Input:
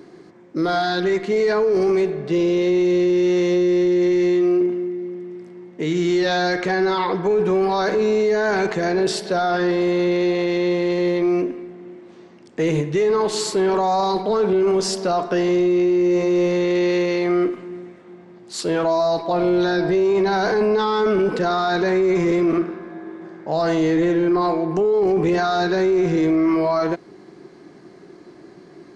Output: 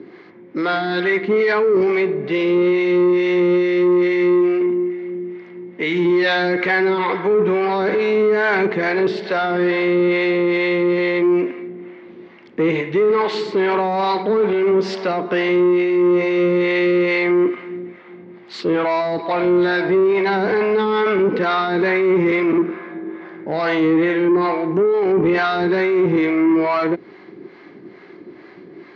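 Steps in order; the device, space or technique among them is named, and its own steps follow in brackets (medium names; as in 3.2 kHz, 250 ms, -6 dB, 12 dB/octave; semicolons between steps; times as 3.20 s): guitar amplifier with harmonic tremolo (harmonic tremolo 2.3 Hz, depth 70%, crossover 550 Hz; saturation -17 dBFS, distortion -19 dB; cabinet simulation 98–3600 Hz, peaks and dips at 150 Hz -6 dB, 680 Hz -5 dB, 2.1 kHz +7 dB); treble shelf 7.2 kHz +7 dB; trim +7.5 dB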